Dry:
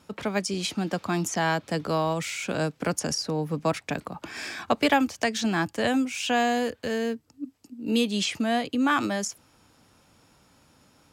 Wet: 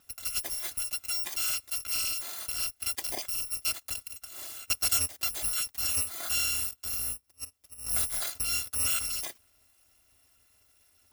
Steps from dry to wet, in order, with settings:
samples in bit-reversed order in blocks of 256 samples
level −5.5 dB

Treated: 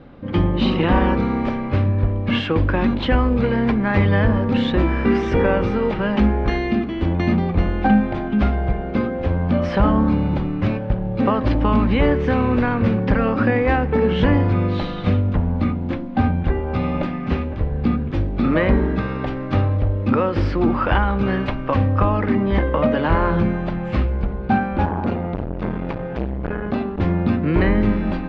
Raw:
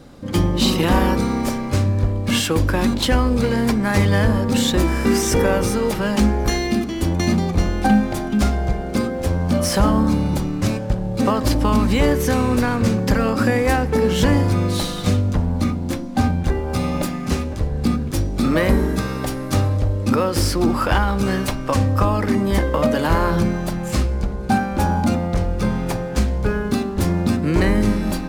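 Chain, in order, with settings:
low-pass filter 3,000 Hz 24 dB per octave
0:24.85–0:27.00: saturating transformer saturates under 490 Hz

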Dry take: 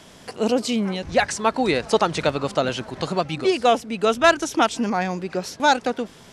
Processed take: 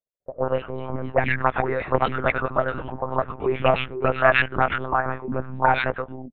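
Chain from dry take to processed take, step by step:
noise gate −37 dBFS, range −10 dB
dead-zone distortion −48 dBFS
three-band delay without the direct sound mids, highs, lows 110/490 ms, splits 280/1,600 Hz
one-pitch LPC vocoder at 8 kHz 130 Hz
envelope-controlled low-pass 530–2,300 Hz up, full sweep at −16.5 dBFS
level −1.5 dB

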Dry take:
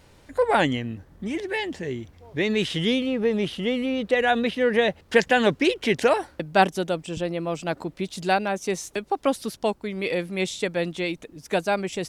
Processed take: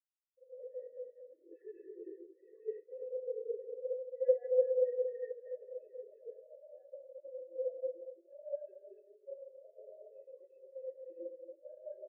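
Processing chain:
reversed piece by piece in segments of 31 ms
bass and treble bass −12 dB, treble −12 dB
automatic gain control gain up to 11.5 dB
formant filter e
high-shelf EQ 2,400 Hz +6.5 dB
comb filter 3.1 ms, depth 41%
on a send: repeating echo 229 ms, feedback 49%, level −6 dB
on the sum: reversed playback
downward compressor 10 to 1, threshold −33 dBFS, peak gain reduction 20 dB
reversed playback
convolution reverb RT60 2.3 s, pre-delay 67 ms, DRR −4.5 dB
sample-and-hold swept by an LFO 8×, swing 100% 3.2 Hz
every bin expanded away from the loudest bin 4 to 1

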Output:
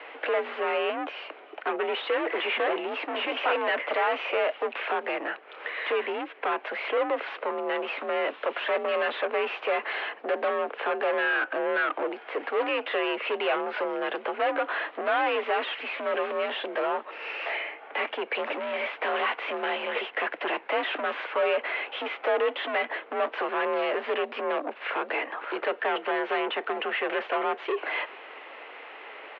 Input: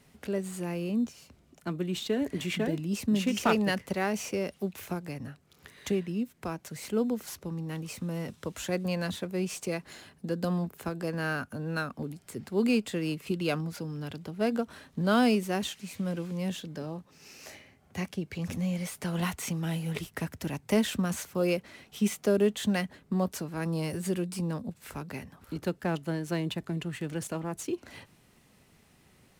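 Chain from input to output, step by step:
mid-hump overdrive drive 37 dB, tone 2,400 Hz, clips at −12.5 dBFS
far-end echo of a speakerphone 390 ms, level −27 dB
single-sideband voice off tune +52 Hz 350–3,000 Hz
level −4 dB

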